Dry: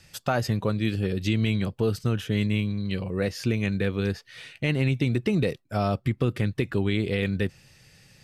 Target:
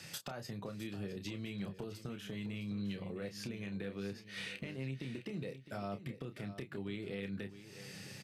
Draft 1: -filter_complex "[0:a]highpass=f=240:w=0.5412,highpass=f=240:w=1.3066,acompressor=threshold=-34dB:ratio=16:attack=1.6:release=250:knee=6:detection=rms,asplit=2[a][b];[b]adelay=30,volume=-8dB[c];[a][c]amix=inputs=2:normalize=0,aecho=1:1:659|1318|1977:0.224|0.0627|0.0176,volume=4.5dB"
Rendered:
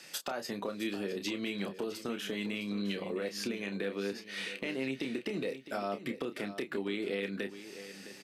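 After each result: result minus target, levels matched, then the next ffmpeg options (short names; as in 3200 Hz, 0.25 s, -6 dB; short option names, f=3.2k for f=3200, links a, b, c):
125 Hz band -10.0 dB; compressor: peak gain reduction -8.5 dB
-filter_complex "[0:a]highpass=f=120:w=0.5412,highpass=f=120:w=1.3066,acompressor=threshold=-34dB:ratio=16:attack=1.6:release=250:knee=6:detection=rms,asplit=2[a][b];[b]adelay=30,volume=-8dB[c];[a][c]amix=inputs=2:normalize=0,aecho=1:1:659|1318|1977:0.224|0.0627|0.0176,volume=4.5dB"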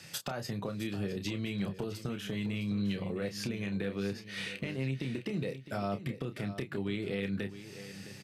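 compressor: peak gain reduction -7 dB
-filter_complex "[0:a]highpass=f=120:w=0.5412,highpass=f=120:w=1.3066,acompressor=threshold=-41.5dB:ratio=16:attack=1.6:release=250:knee=6:detection=rms,asplit=2[a][b];[b]adelay=30,volume=-8dB[c];[a][c]amix=inputs=2:normalize=0,aecho=1:1:659|1318|1977:0.224|0.0627|0.0176,volume=4.5dB"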